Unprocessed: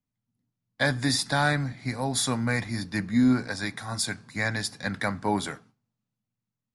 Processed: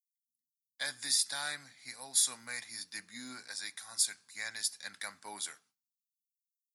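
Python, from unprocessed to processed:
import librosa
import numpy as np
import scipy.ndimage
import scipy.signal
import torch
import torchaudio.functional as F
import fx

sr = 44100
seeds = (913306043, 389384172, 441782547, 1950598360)

y = np.diff(x, prepend=0.0)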